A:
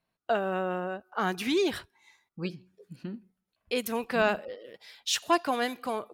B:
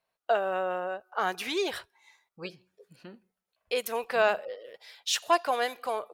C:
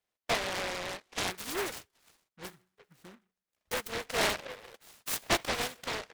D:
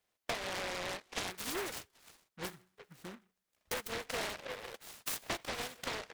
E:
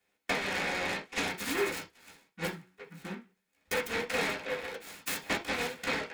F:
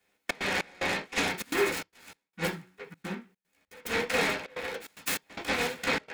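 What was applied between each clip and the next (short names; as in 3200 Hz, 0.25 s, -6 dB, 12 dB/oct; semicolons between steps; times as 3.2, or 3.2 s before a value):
resonant low shelf 370 Hz -10 dB, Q 1.5
noise-modulated delay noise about 1300 Hz, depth 0.31 ms; gain -5 dB
compressor 8:1, threshold -40 dBFS, peak gain reduction 17.5 dB; gain +4.5 dB
reverb, pre-delay 3 ms, DRR -4 dB
step gate "xxx.xx..xxxxxx." 148 bpm -24 dB; gain +4 dB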